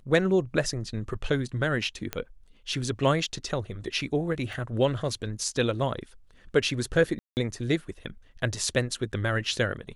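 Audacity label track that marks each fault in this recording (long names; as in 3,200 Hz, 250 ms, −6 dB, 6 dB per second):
2.130000	2.130000	click −13 dBFS
4.530000	4.530000	drop-out 2.3 ms
7.190000	7.370000	drop-out 179 ms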